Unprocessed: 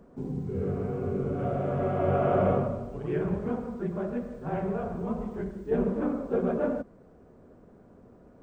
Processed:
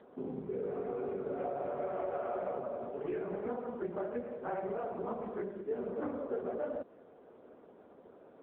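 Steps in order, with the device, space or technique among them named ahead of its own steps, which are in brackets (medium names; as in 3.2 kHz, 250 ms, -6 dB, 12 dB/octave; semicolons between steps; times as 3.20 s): voicemail (band-pass 400–2600 Hz; compression 10:1, threshold -36 dBFS, peak gain reduction 14.5 dB; trim +4 dB; AMR-NB 6.7 kbps 8 kHz)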